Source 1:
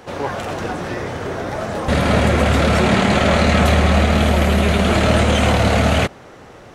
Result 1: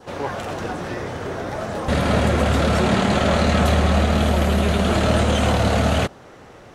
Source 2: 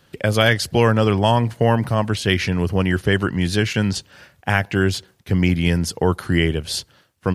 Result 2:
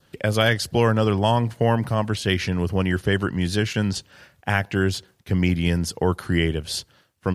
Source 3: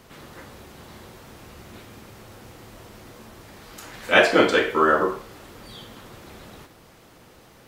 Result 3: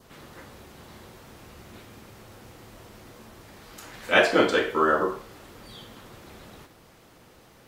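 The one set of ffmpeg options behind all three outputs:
ffmpeg -i in.wav -af "adynamicequalizer=threshold=0.0141:dfrequency=2200:dqfactor=2.7:tfrequency=2200:tqfactor=2.7:attack=5:release=100:ratio=0.375:range=2.5:mode=cutabove:tftype=bell,volume=-3dB" out.wav

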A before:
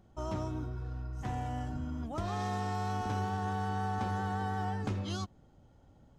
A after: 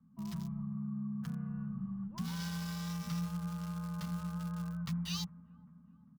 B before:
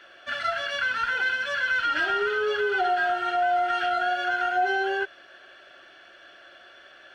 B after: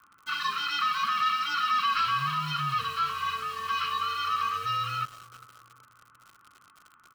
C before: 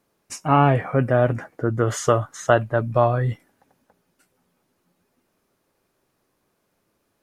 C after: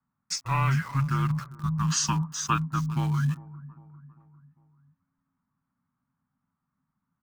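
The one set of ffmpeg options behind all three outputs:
ffmpeg -i in.wav -filter_complex "[0:a]firequalizer=gain_entry='entry(110,0);entry(260,-25);entry(410,-10);entry(710,-28);entry(1400,-1);entry(2600,0);entry(4900,9);entry(7500,2);entry(11000,-12)':delay=0.05:min_phase=1,afreqshift=-270,aecho=1:1:400|800|1200|1600:0.119|0.0582|0.0285|0.014,acrossover=split=350|1300[link_01][link_02][link_03];[link_03]aeval=exprs='val(0)*gte(abs(val(0)),0.00596)':channel_layout=same[link_04];[link_01][link_02][link_04]amix=inputs=3:normalize=0" out.wav

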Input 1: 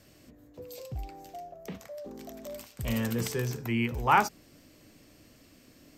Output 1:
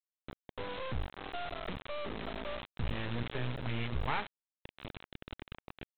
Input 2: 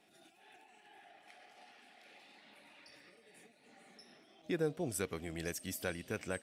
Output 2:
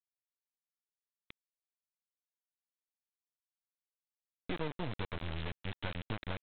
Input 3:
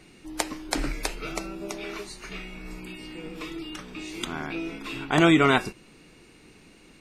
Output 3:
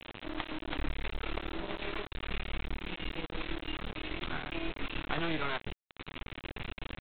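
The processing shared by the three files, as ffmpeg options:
ffmpeg -i in.wav -af "asubboost=boost=5:cutoff=99,acompressor=threshold=-43dB:ratio=3,aresample=8000,acrusher=bits=5:dc=4:mix=0:aa=0.000001,aresample=44100,volume=9dB" out.wav

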